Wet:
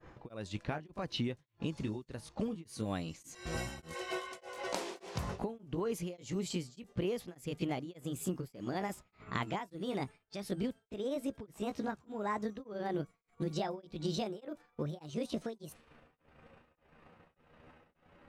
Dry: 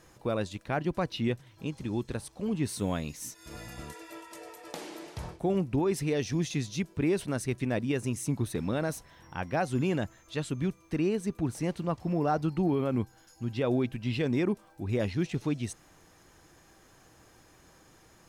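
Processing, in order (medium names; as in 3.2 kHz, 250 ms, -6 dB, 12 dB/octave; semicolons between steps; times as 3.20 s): pitch bend over the whole clip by +8.5 st starting unshifted; compression 8:1, threshold -42 dBFS, peak gain reduction 18 dB; expander -52 dBFS; level-controlled noise filter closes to 1.8 kHz, open at -40.5 dBFS; tremolo of two beating tones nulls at 1.7 Hz; trim +10 dB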